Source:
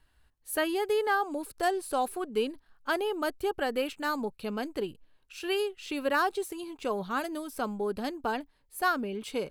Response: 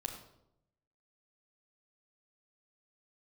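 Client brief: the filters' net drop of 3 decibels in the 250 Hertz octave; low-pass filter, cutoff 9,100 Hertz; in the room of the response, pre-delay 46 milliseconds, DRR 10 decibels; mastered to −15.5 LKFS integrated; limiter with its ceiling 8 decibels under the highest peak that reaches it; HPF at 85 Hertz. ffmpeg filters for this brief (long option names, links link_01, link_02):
-filter_complex "[0:a]highpass=85,lowpass=9100,equalizer=frequency=250:width_type=o:gain=-4,alimiter=limit=-23.5dB:level=0:latency=1,asplit=2[link_01][link_02];[1:a]atrim=start_sample=2205,adelay=46[link_03];[link_02][link_03]afir=irnorm=-1:irlink=0,volume=-10dB[link_04];[link_01][link_04]amix=inputs=2:normalize=0,volume=19dB"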